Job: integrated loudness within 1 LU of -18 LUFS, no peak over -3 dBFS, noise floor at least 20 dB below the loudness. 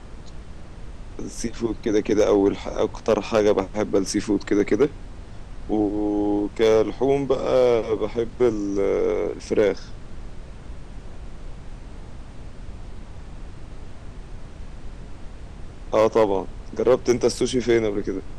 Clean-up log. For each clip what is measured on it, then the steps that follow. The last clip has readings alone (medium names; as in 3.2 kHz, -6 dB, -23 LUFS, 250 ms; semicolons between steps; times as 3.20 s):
clipped samples 0.6%; clipping level -10.0 dBFS; noise floor -40 dBFS; noise floor target -42 dBFS; loudness -22.0 LUFS; peak level -10.0 dBFS; loudness target -18.0 LUFS
-> clip repair -10 dBFS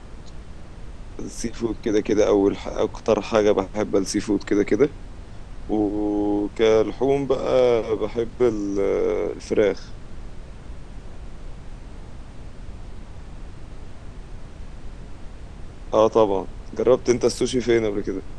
clipped samples 0.0%; noise floor -40 dBFS; noise floor target -42 dBFS
-> noise print and reduce 6 dB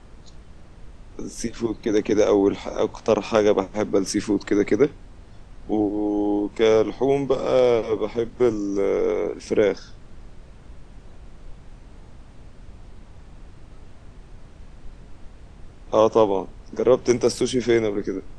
noise floor -46 dBFS; loudness -22.0 LUFS; peak level -3.0 dBFS; loudness target -18.0 LUFS
-> trim +4 dB; peak limiter -3 dBFS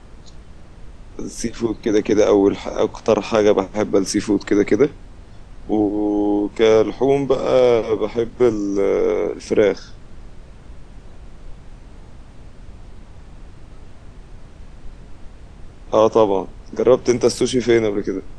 loudness -18.0 LUFS; peak level -3.0 dBFS; noise floor -42 dBFS